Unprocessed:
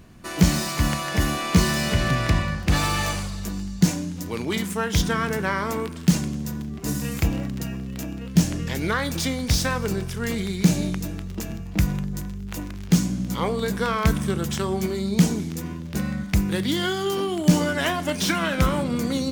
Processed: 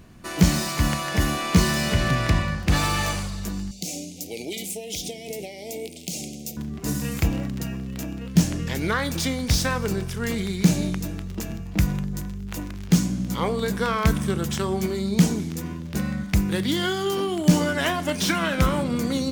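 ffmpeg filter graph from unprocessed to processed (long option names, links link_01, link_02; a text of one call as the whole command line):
ffmpeg -i in.wav -filter_complex "[0:a]asettb=1/sr,asplit=3[link_01][link_02][link_03];[link_01]atrim=end=3.714[link_04];[link_02]atrim=start=3.71:end=6.57,asetpts=PTS-STARTPTS,afade=type=in:duration=0.004:curve=qsin,afade=type=out:start_time=2.856:duration=0.004:curve=qsin,bass=frequency=250:gain=-14,treble=frequency=4000:gain=5,acompressor=threshold=-26dB:ratio=10:attack=3.2:release=140:knee=1:detection=peak,asuperstop=centerf=1300:order=12:qfactor=0.93[link_05];[link_03]atrim=start=6.566[link_06];[link_04][link_05]acrossfade=duration=0.004:curve1=hsin:curve2=qsin[link_07];[link_07][link_06]acrossfade=duration=0.004:curve1=qsin:curve2=hsin" out.wav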